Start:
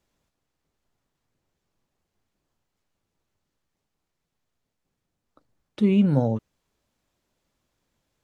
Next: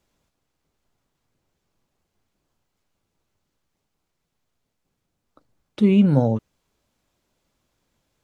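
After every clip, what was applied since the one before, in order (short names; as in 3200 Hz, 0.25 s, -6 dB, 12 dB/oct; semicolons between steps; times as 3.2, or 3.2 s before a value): notch 1800 Hz, Q 23; gain +3.5 dB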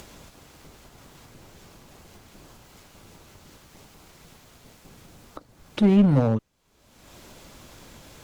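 upward compressor, threshold -26 dBFS; one-sided clip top -15.5 dBFS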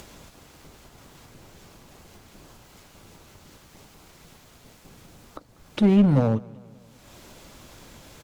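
feedback echo 0.192 s, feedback 56%, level -23.5 dB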